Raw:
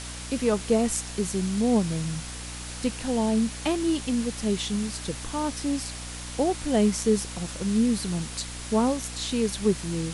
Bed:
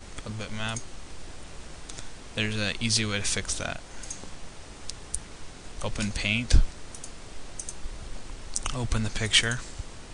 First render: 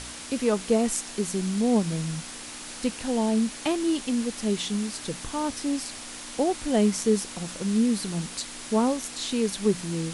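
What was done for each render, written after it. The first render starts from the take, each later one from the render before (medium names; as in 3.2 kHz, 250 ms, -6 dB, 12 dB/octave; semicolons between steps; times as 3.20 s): de-hum 60 Hz, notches 3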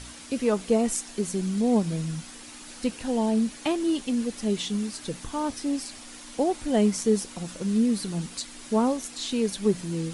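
noise reduction 7 dB, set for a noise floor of -40 dBFS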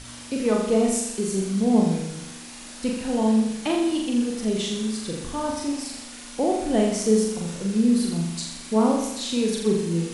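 flutter echo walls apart 7.1 m, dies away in 0.85 s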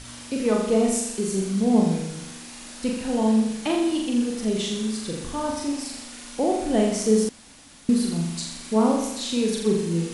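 7.29–7.89 s: room tone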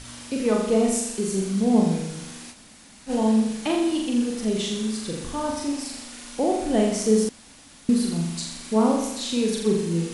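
2.53–3.09 s: room tone, crossfade 0.06 s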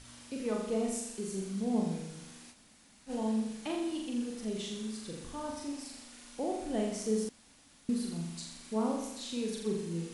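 trim -12 dB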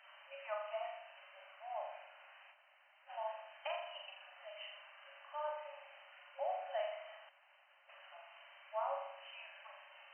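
FFT band-pass 540–3100 Hz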